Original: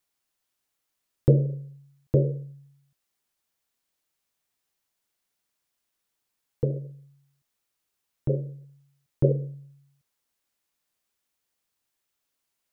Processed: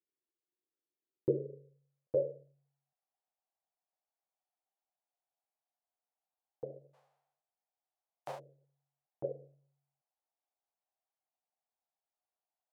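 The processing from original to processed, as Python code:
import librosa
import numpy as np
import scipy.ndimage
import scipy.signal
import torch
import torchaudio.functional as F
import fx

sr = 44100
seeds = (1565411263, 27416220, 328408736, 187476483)

y = fx.envelope_flatten(x, sr, power=0.1, at=(6.93, 8.38), fade=0.02)
y = fx.filter_sweep_bandpass(y, sr, from_hz=360.0, to_hz=740.0, start_s=1.19, end_s=2.77, q=5.3)
y = fx.dynamic_eq(y, sr, hz=240.0, q=0.85, threshold_db=-43.0, ratio=4.0, max_db=-4)
y = F.gain(torch.from_numpy(y), 1.0).numpy()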